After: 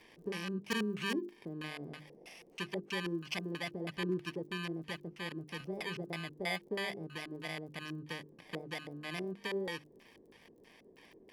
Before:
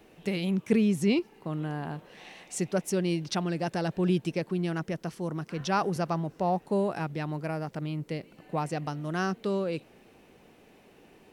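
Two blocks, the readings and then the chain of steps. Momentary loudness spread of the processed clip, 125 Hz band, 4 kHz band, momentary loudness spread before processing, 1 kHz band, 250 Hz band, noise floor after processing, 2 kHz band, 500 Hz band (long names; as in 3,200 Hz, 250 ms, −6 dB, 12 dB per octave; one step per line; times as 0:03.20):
9 LU, −13.0 dB, −1.0 dB, 10 LU, −13.0 dB, −11.5 dB, −62 dBFS, −1.5 dB, −10.0 dB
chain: samples in bit-reversed order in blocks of 32 samples
low-shelf EQ 370 Hz −4.5 dB
mains-hum notches 50/100/150/200/250/300/350/400 Hz
in parallel at +3 dB: downward compressor 20 to 1, threshold −41 dBFS, peak gain reduction 21.5 dB
on the sum: auto-filter low-pass square 3.1 Hz 410–2,600 Hz
surface crackle 37 per second −60 dBFS
hard clipping −15.5 dBFS, distortion −30 dB
first-order pre-emphasis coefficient 0.8
level +3 dB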